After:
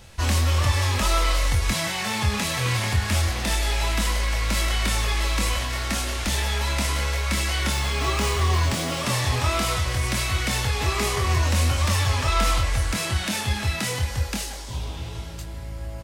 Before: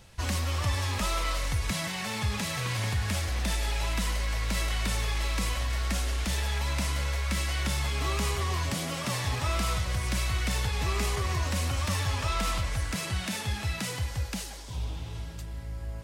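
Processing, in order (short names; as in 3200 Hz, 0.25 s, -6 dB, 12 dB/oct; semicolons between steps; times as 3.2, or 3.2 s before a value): 7.72–9.01 median filter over 3 samples; bell 160 Hz -5.5 dB 0.43 oct; doubler 24 ms -5.5 dB; gain +6 dB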